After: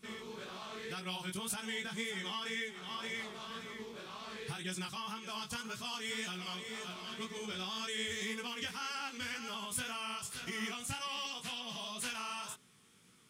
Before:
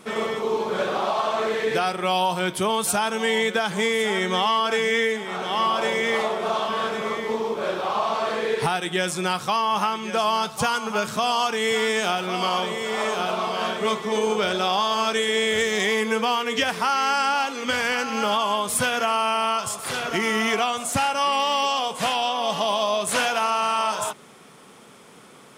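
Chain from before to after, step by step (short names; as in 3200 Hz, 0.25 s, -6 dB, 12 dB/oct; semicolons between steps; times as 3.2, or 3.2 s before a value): passive tone stack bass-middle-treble 6-0-2; time stretch by phase-locked vocoder 0.52×; chorus 1.9 Hz, delay 16 ms, depth 5.3 ms; gain +7.5 dB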